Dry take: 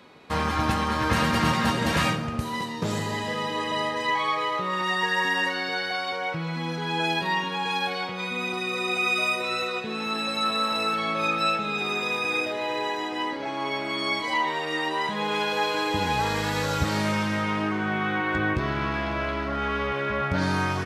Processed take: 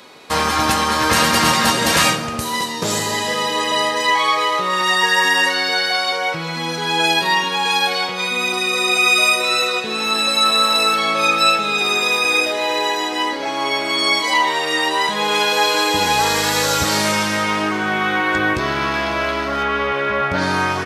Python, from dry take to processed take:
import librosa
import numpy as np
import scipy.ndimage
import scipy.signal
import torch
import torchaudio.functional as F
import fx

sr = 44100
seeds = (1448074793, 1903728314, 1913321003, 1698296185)

y = fx.bass_treble(x, sr, bass_db=-9, treble_db=fx.steps((0.0, 10.0), (19.62, 0.0)))
y = F.gain(torch.from_numpy(y), 8.5).numpy()